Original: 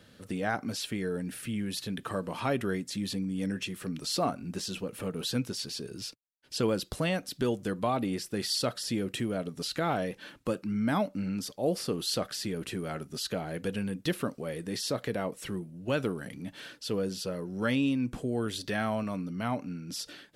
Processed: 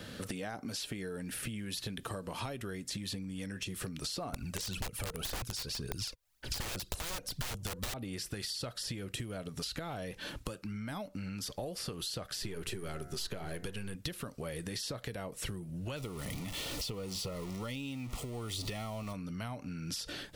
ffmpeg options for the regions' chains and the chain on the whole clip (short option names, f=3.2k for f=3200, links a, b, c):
-filter_complex "[0:a]asettb=1/sr,asplit=3[a][b][c];[a]atrim=end=4.334[d];[b]atrim=start=4.33:end=7.94,asetpts=PTS-STARTPTS,afade=t=in:d=0.004:c=qsin,afade=t=out:st=3.606:d=0.004:c=qsin,acontrast=77,aphaser=in_gain=1:out_gain=1:delay=2.2:decay=0.6:speed=1.9:type=triangular,aeval=exprs='(mod(8.91*val(0)+1,2)-1)/8.91':c=same[e];[c]atrim=start=7.936[f];[d][e]acrossfade=d=0.004:c1=hsin:c2=qsin[g];[g][f]acrossfade=d=0.004:c1=qsin:c2=hsin,asettb=1/sr,asplit=3[h][i][j];[h]atrim=end=12.424[k];[i]atrim=start=12.42:end=13.95,asetpts=PTS-STARTPTS,afade=t=in:d=0.004:c=qsin,afade=t=out:st=1.526:d=0.004:c=qsin,aeval=exprs='if(lt(val(0),0),0.708*val(0),val(0))':c=same,equalizer=f=380:t=o:w=0.29:g=8.5,bandreject=f=88.28:t=h:w=4,bandreject=f=176.56:t=h:w=4,bandreject=f=264.84:t=h:w=4,bandreject=f=353.12:t=h:w=4,bandreject=f=441.4:t=h:w=4,bandreject=f=529.68:t=h:w=4,bandreject=f=617.96:t=h:w=4,bandreject=f=706.24:t=h:w=4,bandreject=f=794.52:t=h:w=4,bandreject=f=882.8:t=h:w=4,bandreject=f=971.08:t=h:w=4,bandreject=f=1.05936k:t=h:w=4,bandreject=f=1.14764k:t=h:w=4,bandreject=f=1.23592k:t=h:w=4,bandreject=f=1.3242k:t=h:w=4,bandreject=f=1.41248k:t=h:w=4,bandreject=f=1.50076k:t=h:w=4,bandreject=f=1.58904k:t=h:w=4,bandreject=f=1.67732k:t=h:w=4,bandreject=f=1.7656k:t=h:w=4,bandreject=f=1.85388k:t=h:w=4,bandreject=f=1.94216k:t=h:w=4,bandreject=f=2.03044k:t=h:w=4,bandreject=f=2.11872k:t=h:w=4[l];[j]atrim=start=13.946[m];[k][l]acrossfade=d=0.004:c1=hsin:c2=qsin[n];[n][m]acrossfade=d=0.004:c1=qsin:c2=hsin,asettb=1/sr,asplit=3[o][p][q];[o]atrim=end=15.964[r];[p]atrim=start=15.96:end=19.13,asetpts=PTS-STARTPTS,afade=t=in:d=0.004:c=qsin,afade=t=out:st=3.166:d=0.004:c=qsin,aeval=exprs='val(0)+0.5*0.01*sgn(val(0))':c=same,asuperstop=centerf=1600:order=4:qfactor=3.8[s];[q]atrim=start=19.126[t];[r][s]acrossfade=d=0.004:c1=hsin:c2=qsin[u];[u][t]acrossfade=d=0.004:c1=qsin:c2=hsin,acompressor=threshold=-41dB:ratio=6,asubboost=boost=5:cutoff=95,acrossover=split=910|3400[v][w][x];[v]acompressor=threshold=-50dB:ratio=4[y];[w]acompressor=threshold=-59dB:ratio=4[z];[x]acompressor=threshold=-51dB:ratio=4[aa];[y][z][aa]amix=inputs=3:normalize=0,volume=11dB"